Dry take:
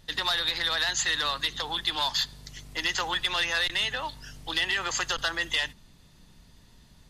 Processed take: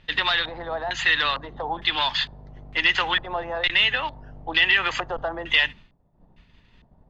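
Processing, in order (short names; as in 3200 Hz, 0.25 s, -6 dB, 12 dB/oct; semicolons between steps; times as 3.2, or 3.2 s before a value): expander -45 dBFS; upward compressor, threshold -49 dBFS; LFO low-pass square 1.1 Hz 730–2600 Hz; gain +4 dB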